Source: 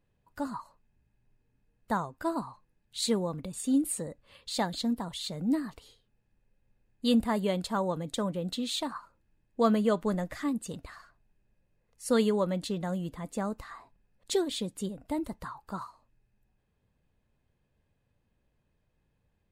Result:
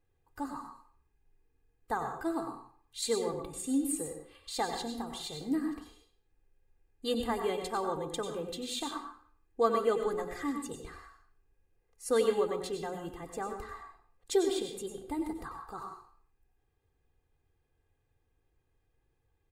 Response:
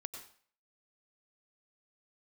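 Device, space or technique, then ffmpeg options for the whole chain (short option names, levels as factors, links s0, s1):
microphone above a desk: -filter_complex "[0:a]equalizer=f=4000:t=o:w=1.1:g=-3.5,bandreject=f=60:t=h:w=6,bandreject=f=120:t=h:w=6,bandreject=f=180:t=h:w=6,bandreject=f=240:t=h:w=6,bandreject=f=300:t=h:w=6,bandreject=f=360:t=h:w=6,bandreject=f=420:t=h:w=6,aecho=1:1:2.5:0.77[s0];[1:a]atrim=start_sample=2205[s1];[s0][s1]afir=irnorm=-1:irlink=0"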